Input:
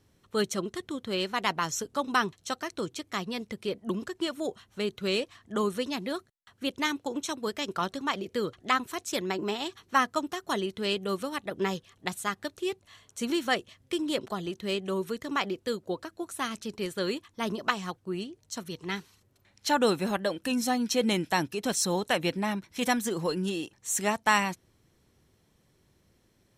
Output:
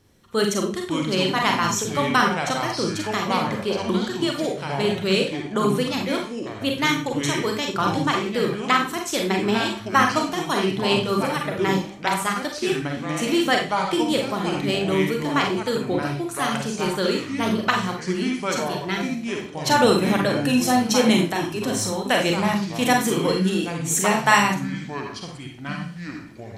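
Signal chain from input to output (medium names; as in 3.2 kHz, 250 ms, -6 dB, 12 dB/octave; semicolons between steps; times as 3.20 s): 21.24–22.07 s: compression 4:1, threshold -31 dBFS, peak gain reduction 9 dB; Schroeder reverb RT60 0.34 s, combs from 32 ms, DRR 1.5 dB; ever faster or slower copies 436 ms, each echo -5 st, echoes 2, each echo -6 dB; trim +5.5 dB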